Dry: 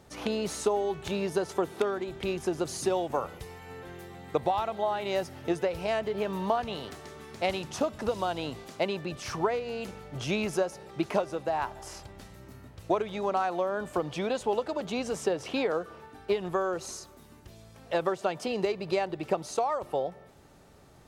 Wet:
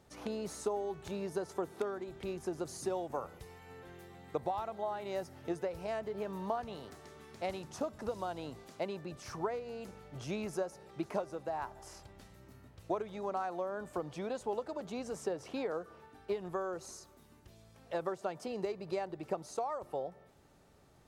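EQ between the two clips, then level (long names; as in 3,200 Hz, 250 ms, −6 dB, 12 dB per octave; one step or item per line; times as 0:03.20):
dynamic equaliser 3,000 Hz, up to −7 dB, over −52 dBFS, Q 1.3
−8.0 dB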